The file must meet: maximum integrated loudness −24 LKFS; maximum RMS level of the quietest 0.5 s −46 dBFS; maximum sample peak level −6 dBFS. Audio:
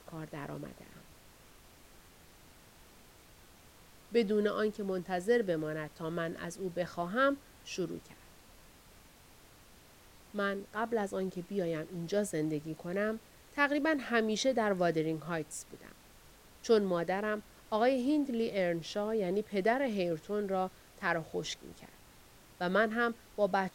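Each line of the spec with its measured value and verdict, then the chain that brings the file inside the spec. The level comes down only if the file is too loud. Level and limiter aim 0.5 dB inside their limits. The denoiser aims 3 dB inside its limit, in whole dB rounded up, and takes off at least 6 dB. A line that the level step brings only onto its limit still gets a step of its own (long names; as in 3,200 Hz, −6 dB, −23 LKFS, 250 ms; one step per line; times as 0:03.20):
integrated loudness −33.5 LKFS: in spec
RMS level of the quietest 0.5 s −58 dBFS: in spec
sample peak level −14.5 dBFS: in spec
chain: no processing needed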